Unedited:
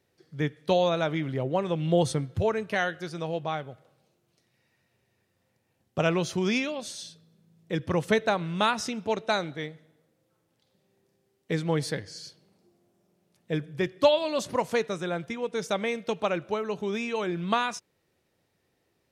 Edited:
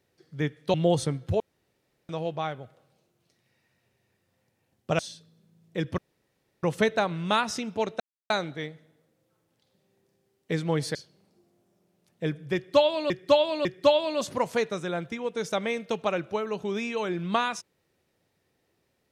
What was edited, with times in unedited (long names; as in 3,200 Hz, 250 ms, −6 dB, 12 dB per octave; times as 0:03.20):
0:00.74–0:01.82: remove
0:02.48–0:03.17: fill with room tone
0:06.07–0:06.94: remove
0:07.93: splice in room tone 0.65 s
0:09.30: splice in silence 0.30 s
0:11.95–0:12.23: remove
0:13.83–0:14.38: repeat, 3 plays